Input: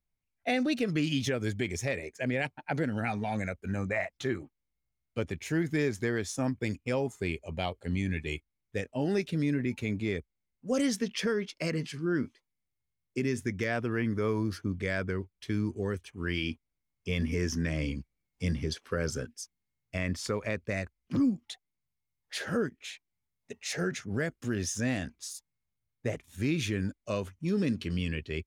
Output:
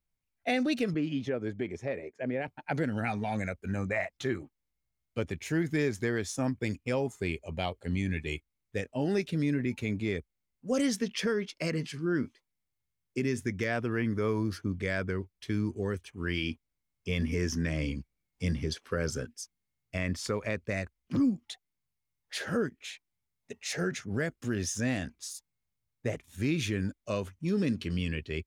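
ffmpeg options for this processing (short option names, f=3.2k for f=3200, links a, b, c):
-filter_complex "[0:a]asettb=1/sr,asplit=3[a][b][c];[a]atrim=end=0.944[d];[b]atrim=start=0.94:end=2.48,asetpts=PTS-STARTPTS,afade=t=in:d=0.004:c=qsin,afade=t=out:st=1.536:d=0.004:c=qsin,bandpass=f=460:t=q:w=0.53[e];[c]atrim=start=2.476[f];[d][e]acrossfade=d=0.004:c1=hsin:c2=qsin[g];[g][f]acrossfade=d=0.004:c1=qsin:c2=hsin"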